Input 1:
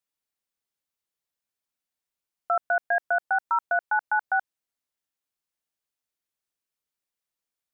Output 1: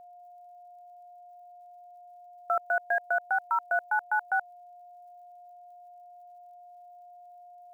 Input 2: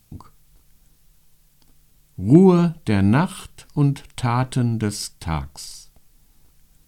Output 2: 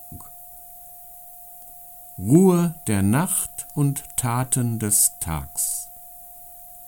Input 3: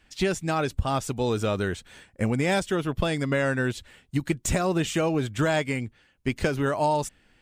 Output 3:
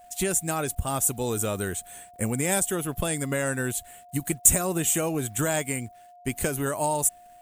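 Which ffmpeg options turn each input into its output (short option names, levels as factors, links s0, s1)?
-af "aexciter=amount=14.1:drive=3.8:freq=7300,acrusher=bits=8:mix=0:aa=0.5,aeval=exprs='val(0)+0.00562*sin(2*PI*710*n/s)':c=same,volume=0.708"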